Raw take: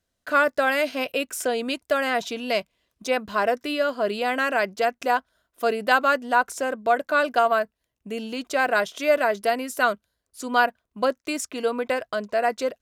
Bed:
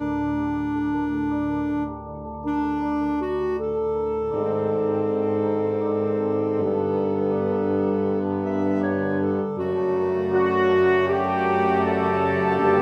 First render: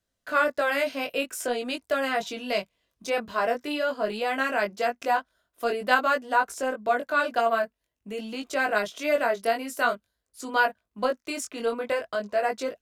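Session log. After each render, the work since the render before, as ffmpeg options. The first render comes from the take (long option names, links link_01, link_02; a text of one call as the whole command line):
ffmpeg -i in.wav -filter_complex "[0:a]flanger=delay=18.5:depth=3.5:speed=0.47,acrossover=split=300[link_01][link_02];[link_01]asoftclip=type=hard:threshold=-37dB[link_03];[link_03][link_02]amix=inputs=2:normalize=0" out.wav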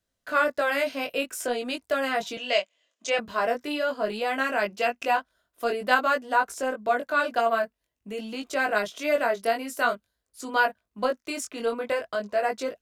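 ffmpeg -i in.wav -filter_complex "[0:a]asettb=1/sr,asplit=3[link_01][link_02][link_03];[link_01]atrim=end=2.374[link_04];[link_02]atrim=start=2.37:end=3.19,asetpts=PTS-STARTPTS,afade=type=in:duration=0.004:curve=qsin,afade=type=out:start_time=0.816:duration=0.004:curve=qsin,highpass=frequency=300:width=0.5412,highpass=frequency=300:width=1.3066,equalizer=frequency=380:width_type=q:width=4:gain=-8,equalizer=frequency=610:width_type=q:width=4:gain=6,equalizer=frequency=880:width_type=q:width=4:gain=-4,equalizer=frequency=1900:width_type=q:width=4:gain=5,equalizer=frequency=3000:width_type=q:width=4:gain=8,equalizer=frequency=6900:width_type=q:width=4:gain=10,lowpass=frequency=8000:width=0.5412,lowpass=frequency=8000:width=1.3066[link_05];[link_03]atrim=start=3.186[link_06];[link_04][link_05]acrossfade=duration=0.004:curve1=hsin:curve2=qsin[link_07];[link_07][link_06]acrossfade=duration=0.004:curve1=qsin:curve2=hsin,asettb=1/sr,asplit=3[link_08][link_09][link_10];[link_08]atrim=end=4.644[link_11];[link_09]atrim=start=4.64:end=5.16,asetpts=PTS-STARTPTS,afade=type=in:duration=0.004:curve=qsin,afade=type=out:start_time=0.516:duration=0.004:curve=qsin,equalizer=frequency=2700:width_type=o:width=0.35:gain=9.5[link_12];[link_10]atrim=start=5.156[link_13];[link_11][link_12]acrossfade=duration=0.004:curve1=hsin:curve2=qsin[link_14];[link_14][link_13]acrossfade=duration=0.004:curve1=qsin:curve2=hsin" out.wav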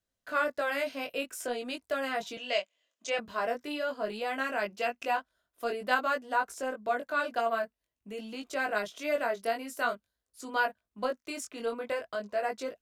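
ffmpeg -i in.wav -af "volume=-6dB" out.wav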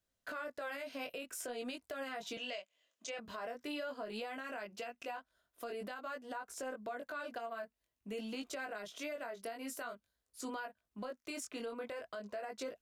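ffmpeg -i in.wav -af "acompressor=threshold=-34dB:ratio=8,alimiter=level_in=9.5dB:limit=-24dB:level=0:latency=1:release=137,volume=-9.5dB" out.wav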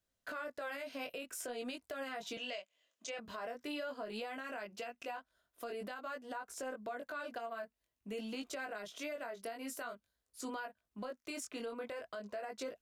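ffmpeg -i in.wav -af anull out.wav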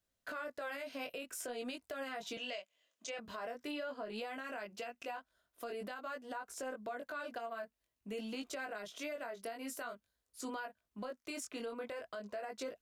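ffmpeg -i in.wav -filter_complex "[0:a]asettb=1/sr,asplit=3[link_01][link_02][link_03];[link_01]atrim=end=3.714[link_04];[link_02]atrim=start=3.71:end=4.18,asetpts=PTS-STARTPTS,afade=type=in:duration=0.004:curve=qsin,afade=type=out:start_time=0.466:duration=0.004:curve=qsin,highshelf=frequency=6200:gain=-7.5[link_05];[link_03]atrim=start=4.176[link_06];[link_04][link_05]acrossfade=duration=0.004:curve1=hsin:curve2=qsin[link_07];[link_07][link_06]acrossfade=duration=0.004:curve1=qsin:curve2=hsin" out.wav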